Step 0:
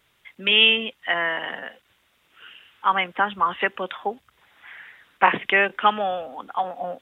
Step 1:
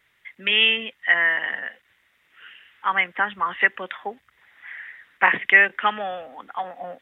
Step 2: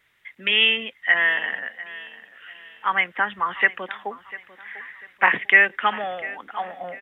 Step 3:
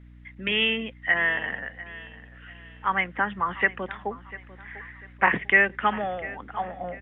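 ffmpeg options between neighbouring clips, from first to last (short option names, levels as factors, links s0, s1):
-af "equalizer=f=1900:t=o:w=0.6:g=12.5,volume=0.562"
-af "aecho=1:1:696|1392|2088:0.126|0.0466|0.0172"
-af "aemphasis=mode=reproduction:type=riaa,aeval=exprs='val(0)+0.00562*(sin(2*PI*60*n/s)+sin(2*PI*2*60*n/s)/2+sin(2*PI*3*60*n/s)/3+sin(2*PI*4*60*n/s)/4+sin(2*PI*5*60*n/s)/5)':c=same,volume=0.794"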